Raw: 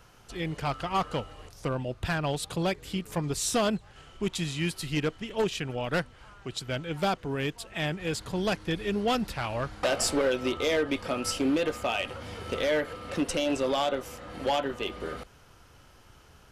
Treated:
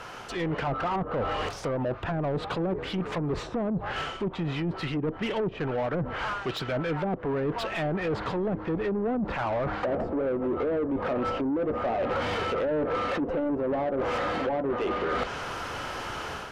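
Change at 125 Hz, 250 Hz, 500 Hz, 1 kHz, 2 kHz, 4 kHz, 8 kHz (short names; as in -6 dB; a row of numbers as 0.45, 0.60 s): +1.5 dB, +1.5 dB, +2.0 dB, +2.5 dB, 0.0 dB, -5.0 dB, under -10 dB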